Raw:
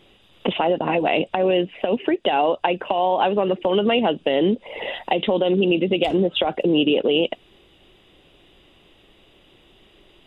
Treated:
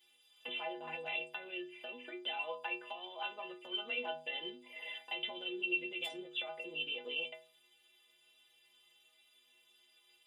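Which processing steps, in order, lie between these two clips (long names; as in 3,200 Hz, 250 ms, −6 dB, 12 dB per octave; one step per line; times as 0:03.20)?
first difference
stiff-string resonator 74 Hz, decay 0.83 s, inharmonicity 0.03
level +9.5 dB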